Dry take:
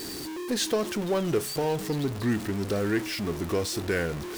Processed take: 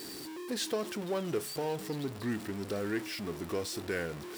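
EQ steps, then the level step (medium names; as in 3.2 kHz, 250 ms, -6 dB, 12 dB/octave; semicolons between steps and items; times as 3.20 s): high-pass 140 Hz 6 dB/octave; band-stop 6.4 kHz, Q 19; -6.5 dB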